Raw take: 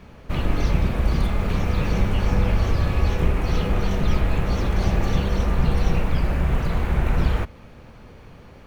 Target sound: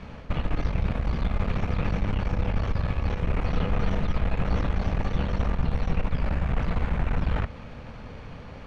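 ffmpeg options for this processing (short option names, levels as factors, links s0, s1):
-filter_complex "[0:a]areverse,acompressor=threshold=0.0562:ratio=6,areverse,lowpass=5300,equalizer=f=360:t=o:w=0.26:g=-8.5,aeval=exprs='(tanh(17.8*val(0)+0.65)-tanh(0.65))/17.8':c=same,acrossover=split=3000[s0][s1];[s1]acompressor=threshold=0.00141:ratio=4:attack=1:release=60[s2];[s0][s2]amix=inputs=2:normalize=0,volume=2.37"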